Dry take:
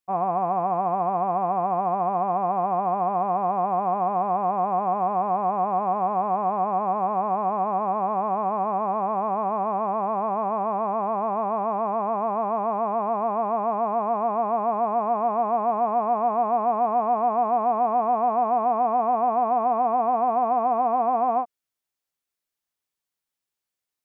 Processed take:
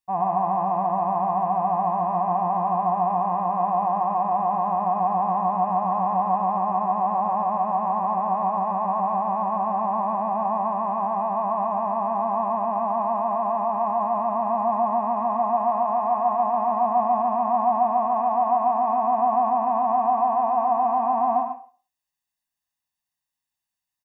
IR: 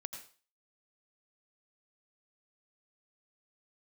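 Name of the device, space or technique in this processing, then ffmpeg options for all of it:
microphone above a desk: -filter_complex "[0:a]aecho=1:1:1.1:0.83[link_01];[1:a]atrim=start_sample=2205[link_02];[link_01][link_02]afir=irnorm=-1:irlink=0"

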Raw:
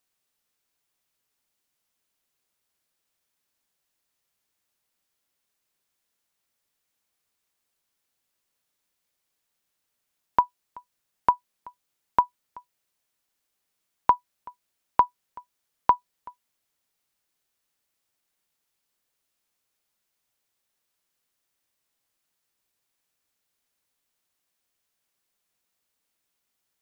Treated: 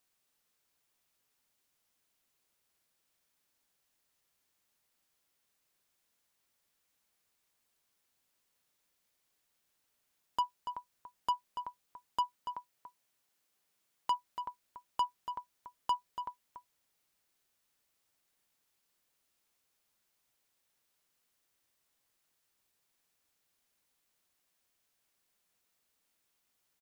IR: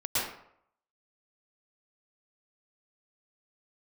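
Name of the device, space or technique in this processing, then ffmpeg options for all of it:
saturation between pre-emphasis and de-emphasis: -filter_complex "[0:a]asettb=1/sr,asplit=3[link_01][link_02][link_03];[link_01]atrim=end=12.204[link_04];[link_02]atrim=start=12.2:end=14.15,asetpts=PTS-STARTPTS,afade=type=in:duration=0.004:curve=qsin,afade=type=out:start_time=1.946:duration=0.004:curve=qsin,highpass=87[link_05];[link_03]atrim=start=14.146[link_06];[link_04][link_05]acrossfade=duration=0.004:curve1=hsin:curve2=qsin[link_07];[link_07][link_06]acrossfade=duration=0.004:curve1=qsin:curve2=hsin,highshelf=frequency=2600:gain=7.5,asoftclip=type=tanh:threshold=-25dB,highshelf=frequency=2600:gain=-7.5,asplit=2[link_08][link_09];[link_09]adelay=285.7,volume=-8dB,highshelf=frequency=4000:gain=-6.43[link_10];[link_08][link_10]amix=inputs=2:normalize=0"

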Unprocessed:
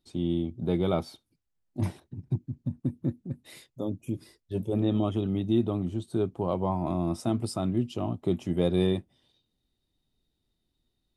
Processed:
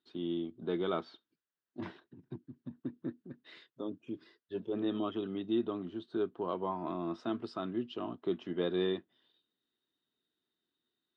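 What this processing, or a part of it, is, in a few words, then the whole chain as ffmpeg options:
phone earpiece: -af "highpass=390,equalizer=frequency=560:width_type=q:width=4:gain=-9,equalizer=frequency=800:width_type=q:width=4:gain=-9,equalizer=frequency=1600:width_type=q:width=4:gain=5,equalizer=frequency=2300:width_type=q:width=4:gain=-8,lowpass=frequency=3600:width=0.5412,lowpass=frequency=3600:width=1.3066"

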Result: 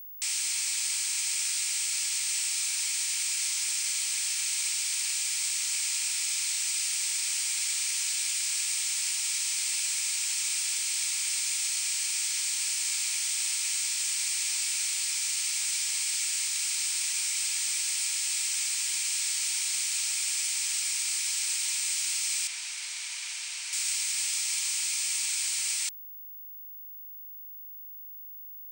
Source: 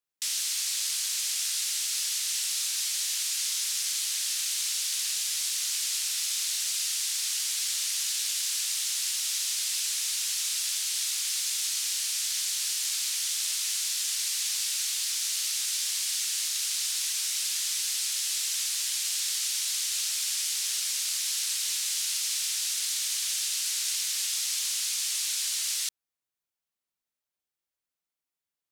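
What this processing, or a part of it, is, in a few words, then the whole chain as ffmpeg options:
old television with a line whistle: -filter_complex "[0:a]highpass=frequency=220:width=0.5412,highpass=frequency=220:width=1.3066,equalizer=frequency=310:width_type=q:width=4:gain=6,equalizer=frequency=540:width_type=q:width=4:gain=-5,equalizer=frequency=920:width_type=q:width=4:gain=8,equalizer=frequency=2300:width_type=q:width=4:gain=9,equalizer=frequency=3600:width_type=q:width=4:gain=-3,equalizer=frequency=8500:width_type=q:width=4:gain=10,lowpass=frequency=8700:width=0.5412,lowpass=frequency=8700:width=1.3066,aeval=exprs='val(0)+0.0112*sin(2*PI*15625*n/s)':channel_layout=same,asettb=1/sr,asplit=3[link_01][link_02][link_03];[link_01]atrim=end=8.324[link_04];[link_02]atrim=start=8.32:end=8.72,asetpts=PTS-STARTPTS,afade=type=in:duration=0.004:curve=qsin,afade=type=out:start_time=0.396:duration=0.004:curve=qsin,highpass=570[link_05];[link_03]atrim=start=8.716[link_06];[link_04][link_05]acrossfade=duration=0.004:curve1=hsin:curve2=qsin[link_07];[link_07][link_06]acrossfade=duration=0.004:curve1=qsin:curve2=hsin,asettb=1/sr,asplit=3[link_08][link_09][link_10];[link_08]atrim=end=22.474[link_11];[link_09]atrim=start=22.47:end=23.73,asetpts=PTS-STARTPTS,afade=type=in:duration=0.004:curve=qsin,afade=type=out:start_time=1.256:duration=0.004:curve=qsin,aemphasis=mode=reproduction:type=50kf[link_12];[link_10]atrim=start=23.726[link_13];[link_11][link_12]acrossfade=duration=0.004:curve1=hsin:curve2=qsin[link_14];[link_14][link_13]acrossfade=duration=0.004:curve1=qsin:curve2=hsin,volume=-2dB"

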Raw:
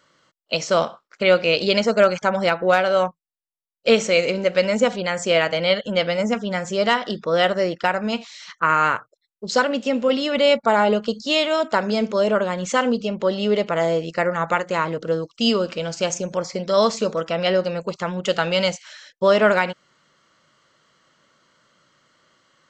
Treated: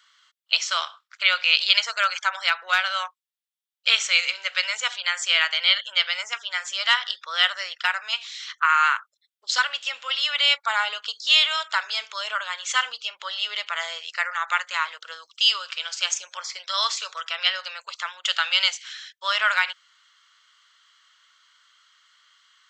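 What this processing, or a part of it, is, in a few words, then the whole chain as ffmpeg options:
headphones lying on a table: -af "highpass=frequency=1200:width=0.5412,highpass=frequency=1200:width=1.3066,equalizer=frequency=3400:width_type=o:width=0.44:gain=7,volume=1.5dB"

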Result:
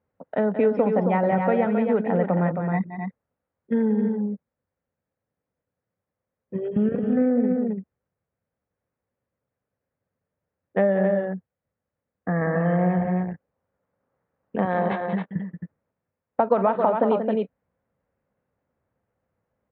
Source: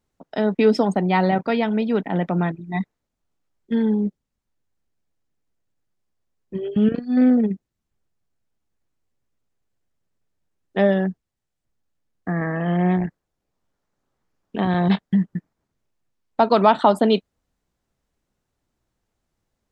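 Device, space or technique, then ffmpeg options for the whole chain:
bass amplifier: -filter_complex "[0:a]asettb=1/sr,asplit=3[link_01][link_02][link_03];[link_01]atrim=end=14.654[link_04];[link_02]atrim=start=14.65:end=15.36,asetpts=PTS-STARTPTS,afade=type=in:duration=0.004:curve=qsin,afade=type=out:start_time=0.706:duration=0.004:curve=qsin,bass=frequency=250:gain=-12,treble=frequency=4000:gain=9[link_05];[link_03]atrim=start=15.356[link_06];[link_04][link_05]acrossfade=duration=0.004:curve1=hsin:curve2=qsin[link_07];[link_07][link_06]acrossfade=duration=0.004:curve1=qsin:curve2=hsin,aecho=1:1:180.8|268.2:0.316|0.447,acompressor=threshold=-18dB:ratio=6,highpass=84,equalizer=frequency=92:width_type=q:width=4:gain=4,equalizer=frequency=340:width_type=q:width=4:gain=-6,equalizer=frequency=520:width_type=q:width=4:gain=9,lowpass=frequency=2100:width=0.5412,lowpass=frequency=2100:width=1.3066"

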